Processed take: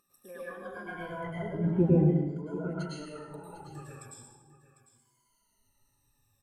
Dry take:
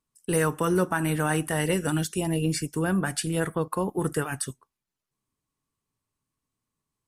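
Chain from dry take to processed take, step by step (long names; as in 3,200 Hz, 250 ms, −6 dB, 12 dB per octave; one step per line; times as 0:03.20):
rippled gain that drifts along the octave scale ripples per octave 1.8, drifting −0.39 Hz, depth 22 dB
source passing by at 0:01.99, 30 m/s, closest 2 metres
treble cut that deepens with the level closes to 410 Hz, closed at −35.5 dBFS
reverb reduction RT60 1.4 s
high-shelf EQ 9,000 Hz +6.5 dB
upward compression, threshold −52 dBFS
tempo change 1.1×
single-tap delay 750 ms −15 dB
dense smooth reverb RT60 1 s, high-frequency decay 0.85×, pre-delay 90 ms, DRR −7.5 dB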